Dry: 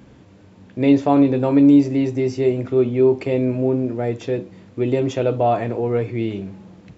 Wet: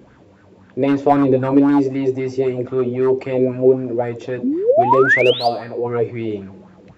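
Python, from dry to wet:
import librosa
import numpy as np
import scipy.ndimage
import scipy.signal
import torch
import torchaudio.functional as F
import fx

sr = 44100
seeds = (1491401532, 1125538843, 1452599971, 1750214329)

y = fx.low_shelf(x, sr, hz=100.0, db=12.0, at=(1.11, 1.54))
y = fx.spec_paint(y, sr, seeds[0], shape='rise', start_s=4.43, length_s=1.05, low_hz=230.0, high_hz=5000.0, level_db=-18.0)
y = np.clip(10.0 ** (8.5 / 20.0) * y, -1.0, 1.0) / 10.0 ** (8.5 / 20.0)
y = fx.comb_fb(y, sr, f0_hz=80.0, decay_s=0.6, harmonics='all', damping=0.0, mix_pct=60, at=(5.32, 5.84), fade=0.02)
y = fx.bell_lfo(y, sr, hz=3.8, low_hz=380.0, high_hz=1600.0, db=14)
y = y * 10.0 ** (-3.0 / 20.0)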